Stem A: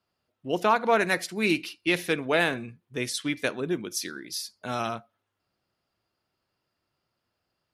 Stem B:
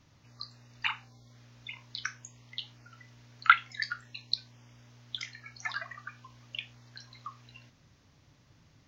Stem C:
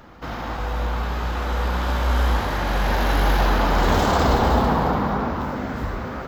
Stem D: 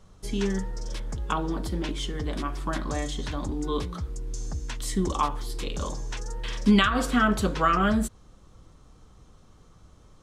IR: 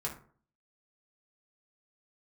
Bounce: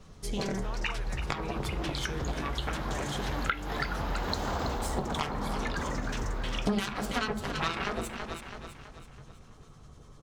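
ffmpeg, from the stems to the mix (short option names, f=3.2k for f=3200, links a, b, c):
-filter_complex "[0:a]volume=-20dB,asplit=2[a][b];[1:a]volume=2.5dB,asplit=2[c][d];[d]volume=-12dB[e];[2:a]adelay=400,volume=-6.5dB[f];[3:a]acrossover=split=1200[g][h];[g]aeval=exprs='val(0)*(1-0.5/2+0.5/2*cos(2*PI*10*n/s))':c=same[i];[h]aeval=exprs='val(0)*(1-0.5/2-0.5/2*cos(2*PI*10*n/s))':c=same[j];[i][j]amix=inputs=2:normalize=0,aeval=exprs='0.316*(cos(1*acos(clip(val(0)/0.316,-1,1)))-cos(1*PI/2))+0.0794*(cos(7*acos(clip(val(0)/0.316,-1,1)))-cos(7*PI/2))':c=same,volume=3dB,asplit=3[k][l][m];[l]volume=-5.5dB[n];[m]volume=-12dB[o];[b]apad=whole_len=294378[p];[f][p]sidechaincompress=threshold=-48dB:ratio=8:attack=45:release=1480[q];[4:a]atrim=start_sample=2205[r];[n][r]afir=irnorm=-1:irlink=0[s];[e][o]amix=inputs=2:normalize=0,aecho=0:1:328|656|984|1312|1640|1968:1|0.45|0.202|0.0911|0.041|0.0185[t];[a][c][q][k][s][t]amix=inputs=6:normalize=0,acompressor=threshold=-29dB:ratio=4"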